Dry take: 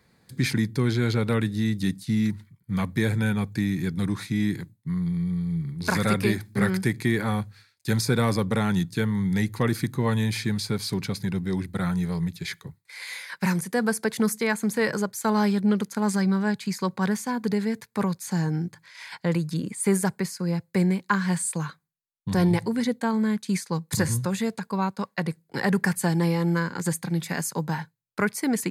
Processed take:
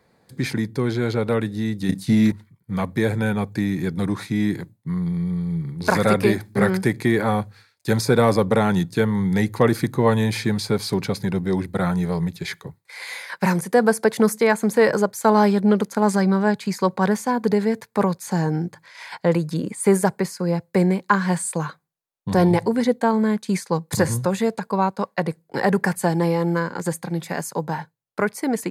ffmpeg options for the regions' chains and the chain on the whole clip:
ffmpeg -i in.wav -filter_complex "[0:a]asettb=1/sr,asplit=3[link_01][link_02][link_03];[link_01]atrim=end=1.894[link_04];[link_02]atrim=start=1.89:end=2.32,asetpts=PTS-STARTPTS,afade=type=in:duration=0.004:curve=qsin,afade=type=out:start_time=0.426:duration=0.004:curve=qsin,acontrast=73,asplit=2[link_05][link_06];[link_06]adelay=31,volume=-9.5dB[link_07];[link_05][link_07]amix=inputs=2:normalize=0,atrim=end_sample=18963[link_08];[link_03]atrim=start=2.316[link_09];[link_04][link_08]acrossfade=duration=0.004:curve1=hsin:curve2=qsin[link_10];[link_10][link_09]acrossfade=duration=0.004:curve1=qsin:curve2=hsin,equalizer=frequency=610:width=0.7:gain=10,dynaudnorm=framelen=290:gausssize=21:maxgain=11.5dB,volume=-2.5dB" out.wav

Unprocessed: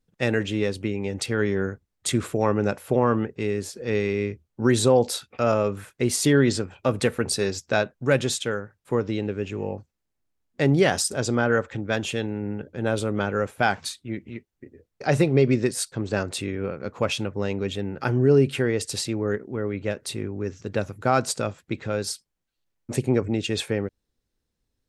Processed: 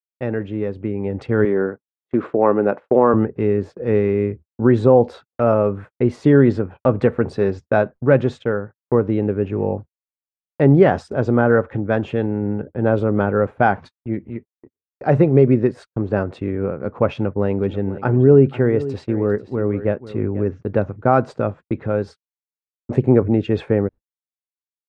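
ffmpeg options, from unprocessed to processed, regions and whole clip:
ffmpeg -i in.wav -filter_complex "[0:a]asettb=1/sr,asplit=3[link_01][link_02][link_03];[link_01]atrim=end=1.454[link_04];[link_02]atrim=start=1.45:end=3.14,asetpts=PTS-STARTPTS,afade=type=in:duration=0.004:curve=qsin,afade=type=out:start_time=1.686:duration=0.004:curve=qsin,highpass=260,lowpass=5100,agate=range=-7dB:threshold=-45dB:ratio=16:release=100:detection=peak[link_05];[link_03]atrim=start=3.136[link_06];[link_04][link_05]acrossfade=duration=0.004:curve1=hsin:curve2=qsin[link_07];[link_07][link_06]acrossfade=duration=0.004:curve1=qsin:curve2=hsin,asettb=1/sr,asplit=3[link_08][link_09][link_10];[link_08]atrim=end=17.144[link_11];[link_09]atrim=start=17.14:end=20.52,asetpts=PTS-STARTPTS,afade=type=in:duration=0.004:curve=qsin,afade=type=out:start_time=3.376:duration=0.004:curve=qsin,agate=range=-33dB:threshold=-34dB:ratio=3:release=100:detection=peak,aecho=1:1:490:0.178,atrim=end_sample=149058[link_12];[link_10]atrim=start=20.516[link_13];[link_11][link_12]acrossfade=duration=0.004:curve1=hsin:curve2=qsin[link_14];[link_14][link_13]acrossfade=duration=0.004:curve1=qsin:curve2=hsin,lowpass=1200,agate=range=-56dB:threshold=-40dB:ratio=16:detection=peak,dynaudnorm=framelen=750:gausssize=3:maxgain=11.5dB" out.wav

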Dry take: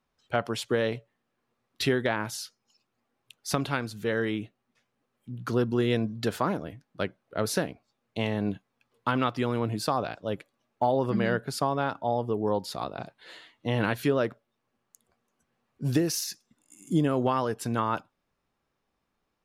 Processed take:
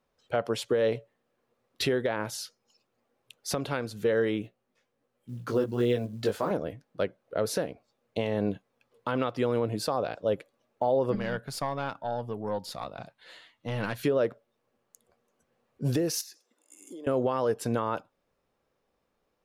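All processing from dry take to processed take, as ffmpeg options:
ffmpeg -i in.wav -filter_complex "[0:a]asettb=1/sr,asplit=3[link_01][link_02][link_03];[link_01]atrim=end=4.424[link_04];[link_02]atrim=start=4.42:end=6.51,asetpts=PTS-STARTPTS,afade=type=in:duration=0.004:curve=qsin,afade=type=out:start_time=2.086:duration=0.004:curve=qsin,flanger=delay=16:depth=3.8:speed=1.3,acrusher=bits=8:mode=log:mix=0:aa=0.000001[link_05];[link_03]atrim=start=6.506[link_06];[link_04][link_05]acrossfade=duration=0.004:curve1=hsin:curve2=qsin[link_07];[link_07][link_06]acrossfade=duration=0.004:curve1=qsin:curve2=hsin,asettb=1/sr,asplit=3[link_08][link_09][link_10];[link_08]atrim=end=11.154[link_11];[link_09]atrim=start=11.15:end=14.04,asetpts=PTS-STARTPTS,afade=type=in:duration=0.004:curve=qsin,afade=type=out:start_time=2.886:duration=0.004:curve=qsin,equalizer=frequency=420:width_type=o:width=1.2:gain=-11,aeval=exprs='(tanh(10*val(0)+0.55)-tanh(0.55))/10':channel_layout=same[link_12];[link_10]atrim=start=14.036[link_13];[link_11][link_12]acrossfade=duration=0.004:curve1=hsin:curve2=qsin[link_14];[link_14][link_13]acrossfade=duration=0.004:curve1=qsin:curve2=hsin,asettb=1/sr,asplit=3[link_15][link_16][link_17];[link_15]atrim=end=16.214[link_18];[link_16]atrim=start=16.21:end=17.07,asetpts=PTS-STARTPTS,afade=type=in:duration=0.004:curve=qsin,afade=type=out:start_time=0.856:duration=0.004:curve=qsin,highpass=frequency=320:width=0.5412,highpass=frequency=320:width=1.3066,acompressor=threshold=-43dB:ratio=10:attack=3.2:release=140:knee=1:detection=peak[link_19];[link_17]atrim=start=17.066[link_20];[link_18][link_19]acrossfade=duration=0.004:curve1=hsin:curve2=qsin[link_21];[link_21][link_20]acrossfade=duration=0.004:curve1=qsin:curve2=hsin,equalizer=frequency=510:width=2:gain=9,alimiter=limit=-16.5dB:level=0:latency=1:release=240" out.wav

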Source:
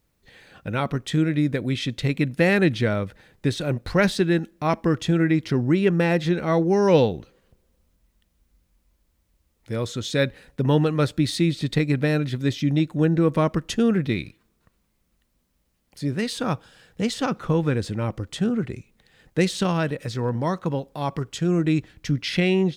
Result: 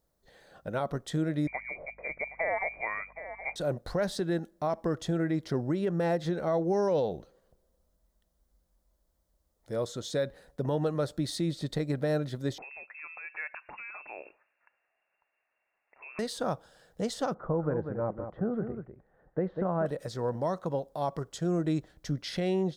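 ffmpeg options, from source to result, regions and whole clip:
ffmpeg -i in.wav -filter_complex "[0:a]asettb=1/sr,asplit=3[link_01][link_02][link_03];[link_01]atrim=end=1.474[link_04];[link_02]atrim=start=1.47:end=3.56,asetpts=PTS-STARTPTS,afade=type=in:duration=0.004:curve=qsin,afade=type=out:start_time=2.086:duration=0.004:curve=qsin,lowpass=frequency=2100:width_type=q:width=0.5098,lowpass=frequency=2100:width_type=q:width=0.6013,lowpass=frequency=2100:width_type=q:width=0.9,lowpass=frequency=2100:width_type=q:width=2.563,afreqshift=-2500,aecho=1:1:768:0.178,atrim=end_sample=92169,aeval=exprs='val(0)+0.00224*(sin(2*PI*50*n/s)+sin(2*PI*2*50*n/s)/2+sin(2*PI*3*50*n/s)/3+sin(2*PI*4*50*n/s)/4+sin(2*PI*5*50*n/s)/5)':channel_layout=same[link_05];[link_03]atrim=start=3.556[link_06];[link_04][link_05]acrossfade=duration=0.004:curve1=hsin:curve2=qsin[link_07];[link_07][link_06]acrossfade=duration=0.004:curve1=qsin:curve2=hsin,asettb=1/sr,asplit=3[link_08][link_09][link_10];[link_08]atrim=end=12.584[link_11];[link_09]atrim=start=12.58:end=16.19,asetpts=PTS-STARTPTS,afade=type=in:duration=0.004:curve=qsin,afade=type=out:start_time=3.606:duration=0.004:curve=qsin,acompressor=threshold=-31dB:ratio=4:attack=3.2:release=140:knee=1:detection=peak,equalizer=frequency=820:width=0.65:gain=13,lowpass=frequency=2400:width_type=q:width=0.5098,lowpass=frequency=2400:width_type=q:width=0.6013,lowpass=frequency=2400:width_type=q:width=0.9,lowpass=frequency=2400:width_type=q:width=2.563,afreqshift=-2800[link_12];[link_10]atrim=start=16.186[link_13];[link_11][link_12]acrossfade=duration=0.004:curve1=hsin:curve2=qsin[link_14];[link_14][link_13]acrossfade=duration=0.004:curve1=qsin:curve2=hsin,asettb=1/sr,asplit=3[link_15][link_16][link_17];[link_15]atrim=end=17.344[link_18];[link_16]atrim=start=17.34:end=19.86,asetpts=PTS-STARTPTS,afade=type=in:duration=0.004:curve=qsin,afade=type=out:start_time=2.516:duration=0.004:curve=qsin,lowpass=frequency=1600:width=0.5412,lowpass=frequency=1600:width=1.3066,aecho=1:1:194:0.376,atrim=end_sample=111132[link_19];[link_17]atrim=start=19.856[link_20];[link_18][link_19]acrossfade=duration=0.004:curve1=hsin:curve2=qsin[link_21];[link_21][link_20]acrossfade=duration=0.004:curve1=qsin:curve2=hsin,equalizer=frequency=100:width_type=o:width=0.67:gain=-8,equalizer=frequency=250:width_type=o:width=0.67:gain=-4,equalizer=frequency=630:width_type=o:width=0.67:gain=8,equalizer=frequency=2500:width_type=o:width=0.67:gain=-12,alimiter=limit=-14.5dB:level=0:latency=1:release=94,volume=-6dB" out.wav

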